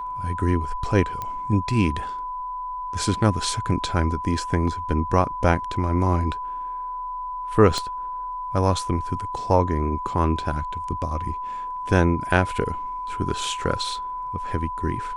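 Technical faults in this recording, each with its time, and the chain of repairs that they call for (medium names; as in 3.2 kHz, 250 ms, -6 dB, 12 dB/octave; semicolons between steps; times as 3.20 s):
whine 1 kHz -28 dBFS
1.22 s: pop -16 dBFS
7.78 s: pop -13 dBFS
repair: de-click; band-stop 1 kHz, Q 30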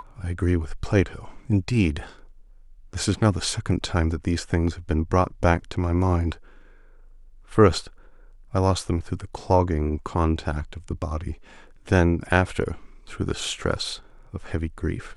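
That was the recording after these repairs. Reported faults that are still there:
7.78 s: pop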